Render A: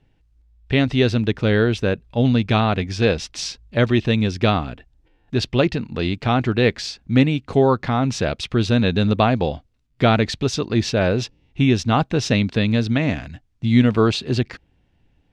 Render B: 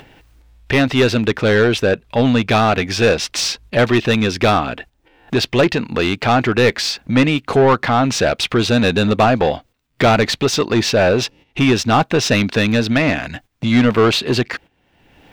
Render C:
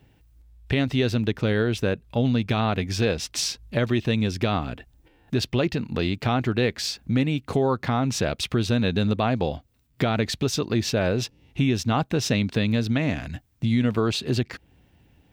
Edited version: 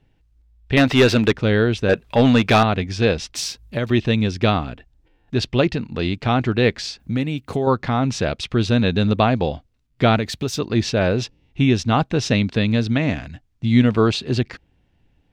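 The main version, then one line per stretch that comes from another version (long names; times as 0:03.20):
A
0:00.77–0:01.33: punch in from B
0:01.89–0:02.63: punch in from B
0:03.35–0:03.90: punch in from C
0:07.00–0:07.67: punch in from C
0:10.19–0:10.59: punch in from C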